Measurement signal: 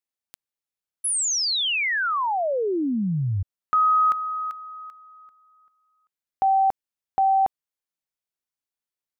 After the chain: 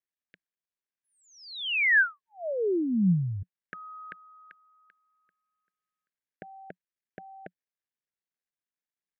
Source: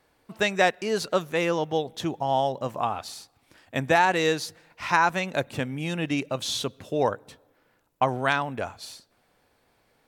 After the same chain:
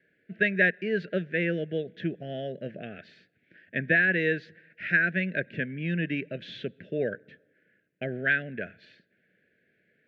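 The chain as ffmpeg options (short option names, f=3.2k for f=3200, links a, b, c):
-af "asuperstop=centerf=1000:order=8:qfactor=0.99,highpass=170,equalizer=f=180:t=q:w=4:g=7,equalizer=f=280:t=q:w=4:g=-5,equalizer=f=530:t=q:w=4:g=-6,equalizer=f=750:t=q:w=4:g=-5,equalizer=f=1.6k:t=q:w=4:g=9,lowpass=f=2.5k:w=0.5412,lowpass=f=2.5k:w=1.3066" -ar 48000 -c:a libopus -b:a 256k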